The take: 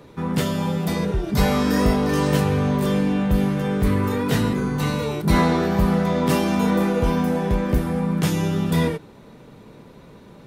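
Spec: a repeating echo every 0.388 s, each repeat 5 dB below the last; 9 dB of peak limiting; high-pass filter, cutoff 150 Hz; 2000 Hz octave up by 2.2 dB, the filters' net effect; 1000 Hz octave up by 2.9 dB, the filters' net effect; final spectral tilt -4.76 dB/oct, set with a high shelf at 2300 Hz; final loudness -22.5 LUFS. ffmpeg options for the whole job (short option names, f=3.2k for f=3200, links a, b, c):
-af "highpass=150,equalizer=f=1k:t=o:g=3.5,equalizer=f=2k:t=o:g=4.5,highshelf=f=2.3k:g=-6,alimiter=limit=-14.5dB:level=0:latency=1,aecho=1:1:388|776|1164|1552|1940|2328|2716:0.562|0.315|0.176|0.0988|0.0553|0.031|0.0173"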